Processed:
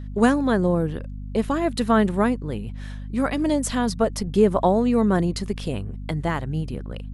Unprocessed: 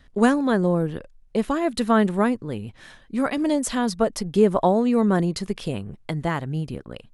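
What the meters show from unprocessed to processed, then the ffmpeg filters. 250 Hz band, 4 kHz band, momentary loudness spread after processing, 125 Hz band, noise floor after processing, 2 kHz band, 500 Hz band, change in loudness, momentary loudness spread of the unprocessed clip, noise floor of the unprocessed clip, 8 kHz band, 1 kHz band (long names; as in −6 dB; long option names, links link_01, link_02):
0.0 dB, 0.0 dB, 12 LU, +1.5 dB, −34 dBFS, 0.0 dB, 0.0 dB, 0.0 dB, 13 LU, −53 dBFS, 0.0 dB, 0.0 dB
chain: -af "aeval=exprs='val(0)+0.0251*(sin(2*PI*50*n/s)+sin(2*PI*2*50*n/s)/2+sin(2*PI*3*50*n/s)/3+sin(2*PI*4*50*n/s)/4+sin(2*PI*5*50*n/s)/5)':channel_layout=same"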